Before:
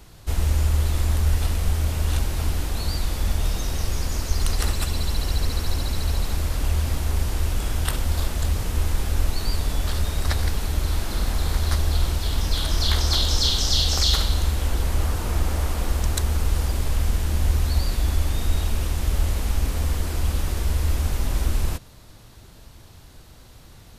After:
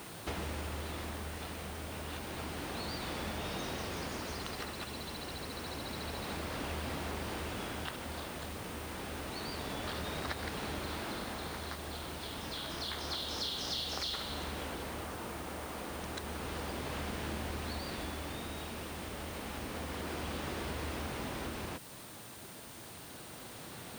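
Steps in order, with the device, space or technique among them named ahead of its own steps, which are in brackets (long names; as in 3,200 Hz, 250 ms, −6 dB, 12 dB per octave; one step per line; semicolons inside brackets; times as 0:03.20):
medium wave at night (band-pass filter 190–3,500 Hz; downward compressor, threshold −42 dBFS, peak gain reduction 18 dB; amplitude tremolo 0.29 Hz, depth 38%; steady tone 9,000 Hz −64 dBFS; white noise bed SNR 13 dB)
level +6 dB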